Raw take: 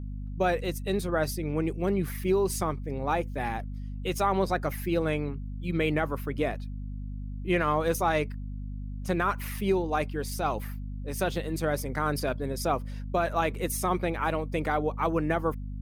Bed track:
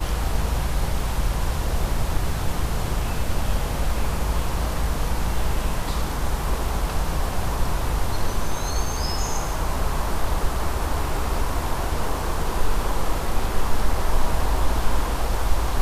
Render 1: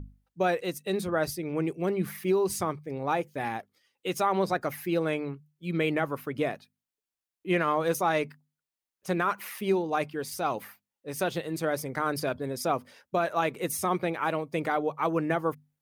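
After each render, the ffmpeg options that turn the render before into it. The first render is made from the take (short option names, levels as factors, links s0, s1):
-af "bandreject=f=50:t=h:w=6,bandreject=f=100:t=h:w=6,bandreject=f=150:t=h:w=6,bandreject=f=200:t=h:w=6,bandreject=f=250:t=h:w=6"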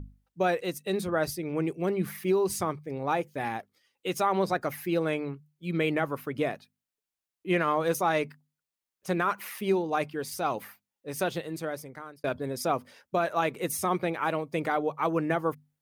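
-filter_complex "[0:a]asplit=2[s0][s1];[s0]atrim=end=12.24,asetpts=PTS-STARTPTS,afade=t=out:st=11.24:d=1[s2];[s1]atrim=start=12.24,asetpts=PTS-STARTPTS,afade=t=in:d=0.004:c=hsin[s3];[s2][s3]concat=n=2:v=0:a=1"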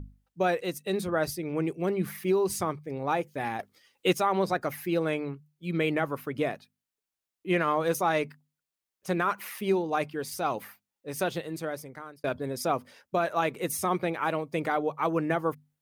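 -filter_complex "[0:a]asettb=1/sr,asplit=3[s0][s1][s2];[s0]atrim=end=3.594[s3];[s1]atrim=start=3.59:end=4.13,asetpts=PTS-STARTPTS,afade=t=in:d=0.004:c=qsin,afade=t=out:st=0.536:d=0.004:c=qsin,acontrast=87[s4];[s2]atrim=start=4.126[s5];[s3][s4]acrossfade=d=0.004:c1=hsin:c2=qsin[s6];[s6][s5]acrossfade=d=0.004:c1=qsin:c2=hsin"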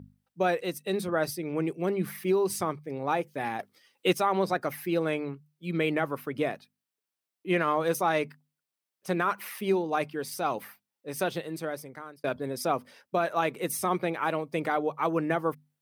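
-af "highpass=120,bandreject=f=6800:w=12"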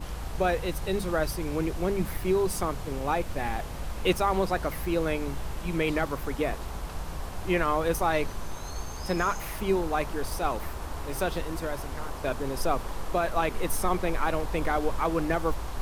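-filter_complex "[1:a]volume=0.266[s0];[0:a][s0]amix=inputs=2:normalize=0"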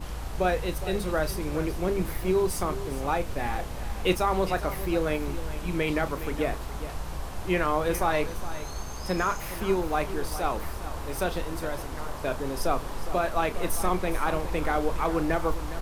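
-filter_complex "[0:a]asplit=2[s0][s1];[s1]adelay=33,volume=0.251[s2];[s0][s2]amix=inputs=2:normalize=0,aecho=1:1:412:0.211"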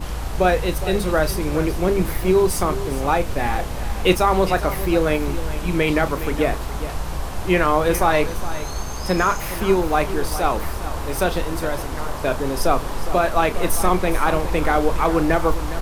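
-af "volume=2.51"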